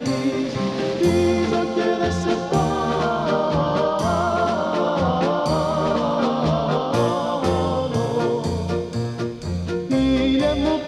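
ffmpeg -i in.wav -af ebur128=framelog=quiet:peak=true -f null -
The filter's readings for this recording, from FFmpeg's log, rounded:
Integrated loudness:
  I:         -21.1 LUFS
  Threshold: -31.1 LUFS
Loudness range:
  LRA:         1.9 LU
  Threshold: -41.1 LUFS
  LRA low:   -22.5 LUFS
  LRA high:  -20.6 LUFS
True peak:
  Peak:       -6.2 dBFS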